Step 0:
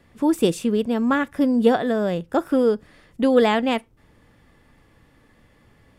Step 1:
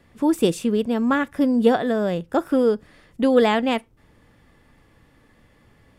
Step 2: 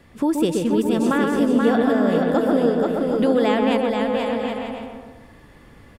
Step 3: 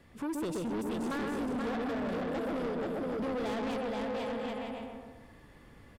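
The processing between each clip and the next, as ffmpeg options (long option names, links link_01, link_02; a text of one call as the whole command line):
ffmpeg -i in.wav -af anull out.wav
ffmpeg -i in.wav -filter_complex "[0:a]asplit=2[link_01][link_02];[link_02]adelay=126,lowpass=frequency=1600:poles=1,volume=-4dB,asplit=2[link_03][link_04];[link_04]adelay=126,lowpass=frequency=1600:poles=1,volume=0.49,asplit=2[link_05][link_06];[link_06]adelay=126,lowpass=frequency=1600:poles=1,volume=0.49,asplit=2[link_07][link_08];[link_08]adelay=126,lowpass=frequency=1600:poles=1,volume=0.49,asplit=2[link_09][link_10];[link_10]adelay=126,lowpass=frequency=1600:poles=1,volume=0.49,asplit=2[link_11][link_12];[link_12]adelay=126,lowpass=frequency=1600:poles=1,volume=0.49[link_13];[link_03][link_05][link_07][link_09][link_11][link_13]amix=inputs=6:normalize=0[link_14];[link_01][link_14]amix=inputs=2:normalize=0,acompressor=threshold=-27dB:ratio=2,asplit=2[link_15][link_16];[link_16]aecho=0:1:480|768|940.8|1044|1107:0.631|0.398|0.251|0.158|0.1[link_17];[link_15][link_17]amix=inputs=2:normalize=0,volume=5dB" out.wav
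ffmpeg -i in.wav -af "asoftclip=type=tanh:threshold=-23.5dB,volume=-8dB" out.wav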